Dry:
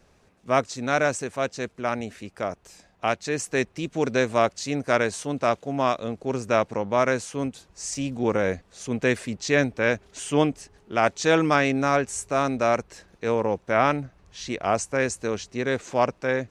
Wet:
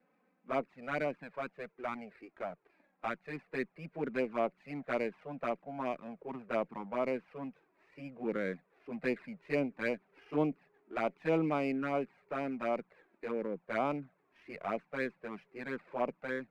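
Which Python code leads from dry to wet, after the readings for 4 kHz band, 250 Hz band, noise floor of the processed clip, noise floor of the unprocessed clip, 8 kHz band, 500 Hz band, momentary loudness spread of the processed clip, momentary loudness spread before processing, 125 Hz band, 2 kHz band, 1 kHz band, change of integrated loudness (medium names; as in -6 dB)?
-20.0 dB, -10.5 dB, -75 dBFS, -60 dBFS, under -35 dB, -12.0 dB, 12 LU, 10 LU, -15.0 dB, -13.5 dB, -13.5 dB, -12.5 dB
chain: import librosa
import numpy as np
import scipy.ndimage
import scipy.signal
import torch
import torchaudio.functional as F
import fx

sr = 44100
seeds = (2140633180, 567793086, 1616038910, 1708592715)

y = fx.env_flanger(x, sr, rest_ms=4.0, full_db=-16.5)
y = scipy.signal.sosfilt(scipy.signal.cheby1(4, 1.0, [160.0, 2400.0], 'bandpass', fs=sr, output='sos'), y)
y = fx.running_max(y, sr, window=3)
y = y * 10.0 ** (-8.0 / 20.0)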